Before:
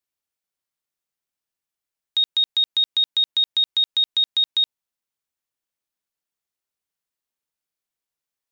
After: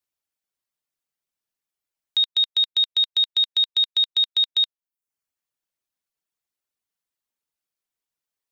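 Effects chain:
reverb reduction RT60 0.52 s

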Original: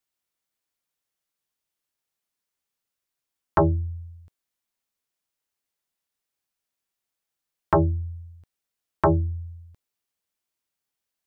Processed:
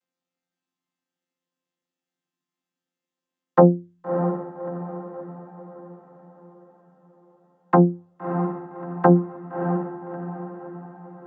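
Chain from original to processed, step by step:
channel vocoder with a chord as carrier bare fifth, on F3
feedback delay with all-pass diffusion 631 ms, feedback 47%, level −7.5 dB
level +7 dB

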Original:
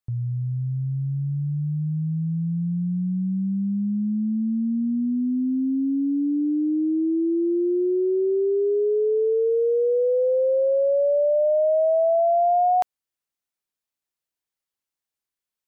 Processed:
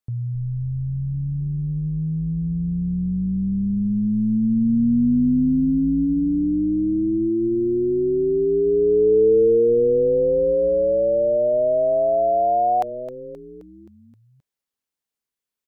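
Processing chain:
hollow resonant body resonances 240/440 Hz, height 6 dB
on a send: echo with shifted repeats 263 ms, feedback 58%, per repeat −100 Hz, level −13.5 dB

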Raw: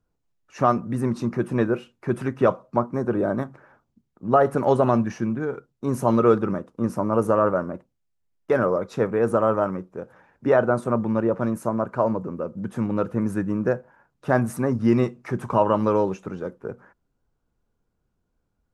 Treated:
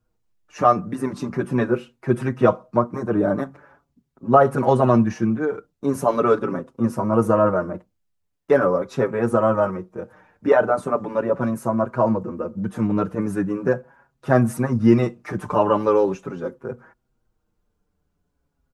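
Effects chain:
barber-pole flanger 5.9 ms −0.41 Hz
level +5.5 dB

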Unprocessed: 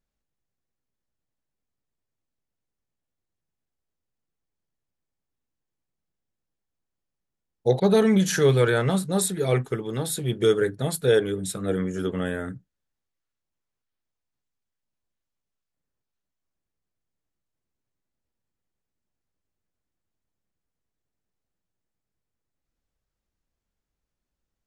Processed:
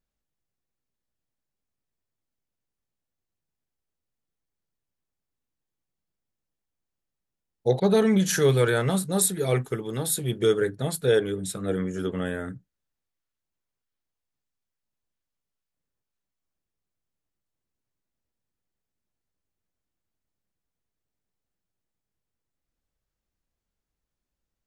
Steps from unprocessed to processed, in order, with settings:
0:08.29–0:10.39: high-shelf EQ 9,200 Hz +10.5 dB
level −1.5 dB

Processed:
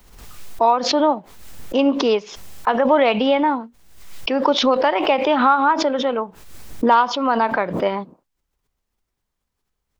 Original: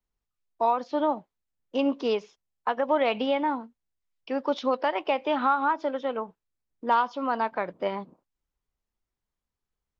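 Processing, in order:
background raised ahead of every attack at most 60 dB per second
level +8 dB

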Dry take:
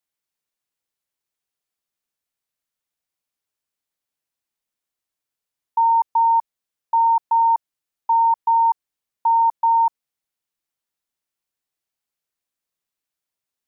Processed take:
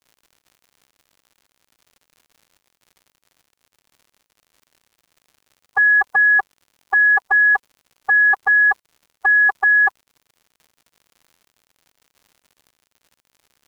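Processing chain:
phase-vocoder pitch shift with formants kept +10.5 semitones
surface crackle 120 per second −44 dBFS
level +2.5 dB

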